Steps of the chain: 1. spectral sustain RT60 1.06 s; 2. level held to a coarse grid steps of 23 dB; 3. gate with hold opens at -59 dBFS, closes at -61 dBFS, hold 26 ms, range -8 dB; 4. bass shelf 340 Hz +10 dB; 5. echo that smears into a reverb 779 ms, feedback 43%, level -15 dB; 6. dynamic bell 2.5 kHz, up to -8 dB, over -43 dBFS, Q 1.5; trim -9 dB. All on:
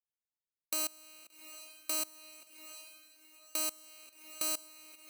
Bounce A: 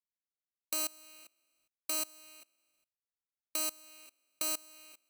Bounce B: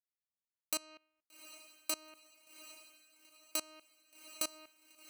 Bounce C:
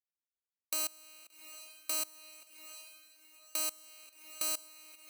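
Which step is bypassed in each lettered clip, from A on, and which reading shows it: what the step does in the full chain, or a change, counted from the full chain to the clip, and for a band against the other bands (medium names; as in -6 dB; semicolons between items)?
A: 5, momentary loudness spread change +1 LU; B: 1, 8 kHz band -2.5 dB; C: 4, 250 Hz band -5.0 dB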